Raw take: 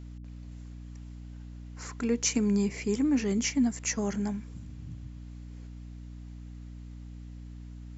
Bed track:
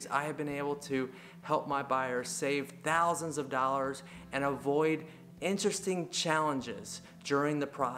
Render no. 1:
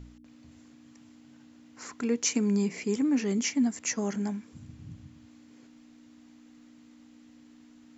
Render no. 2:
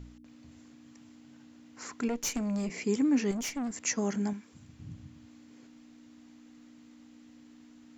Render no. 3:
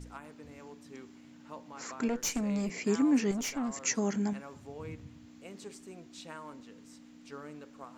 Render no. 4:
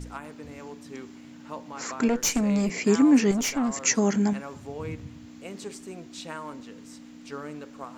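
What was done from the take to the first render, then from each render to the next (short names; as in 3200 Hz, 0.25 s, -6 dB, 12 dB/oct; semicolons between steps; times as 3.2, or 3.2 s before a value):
de-hum 60 Hz, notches 3
2.08–2.7 tube stage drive 27 dB, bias 0.6; 3.31–3.71 tube stage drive 31 dB, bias 0.5; 4.33–4.8 low shelf 380 Hz -8 dB
add bed track -16 dB
gain +8 dB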